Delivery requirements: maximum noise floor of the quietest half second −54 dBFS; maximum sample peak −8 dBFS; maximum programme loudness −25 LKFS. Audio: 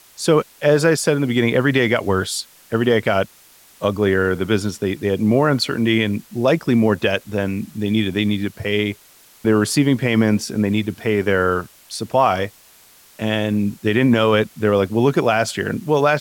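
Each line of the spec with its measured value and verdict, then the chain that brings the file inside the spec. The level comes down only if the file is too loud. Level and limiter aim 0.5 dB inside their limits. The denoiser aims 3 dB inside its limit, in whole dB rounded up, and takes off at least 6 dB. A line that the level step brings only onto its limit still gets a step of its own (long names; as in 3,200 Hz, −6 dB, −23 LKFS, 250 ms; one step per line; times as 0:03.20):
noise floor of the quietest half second −49 dBFS: out of spec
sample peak −4.5 dBFS: out of spec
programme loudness −19.0 LKFS: out of spec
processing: level −6.5 dB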